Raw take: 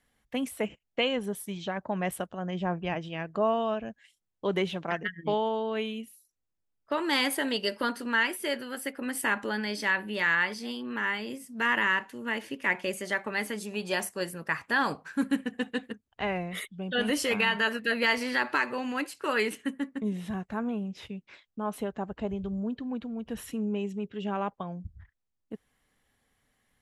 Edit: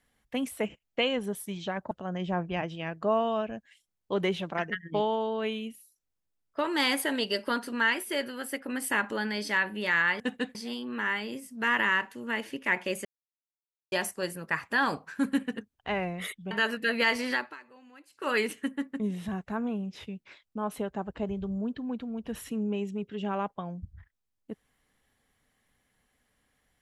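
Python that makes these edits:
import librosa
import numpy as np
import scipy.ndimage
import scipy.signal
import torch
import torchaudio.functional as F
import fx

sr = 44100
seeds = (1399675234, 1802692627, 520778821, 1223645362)

y = fx.edit(x, sr, fx.cut(start_s=1.91, length_s=0.33),
    fx.silence(start_s=13.03, length_s=0.87),
    fx.move(start_s=15.54, length_s=0.35, to_s=10.53),
    fx.cut(start_s=16.84, length_s=0.69),
    fx.fade_down_up(start_s=18.35, length_s=0.97, db=-22.0, fade_s=0.28, curve='qua'), tone=tone)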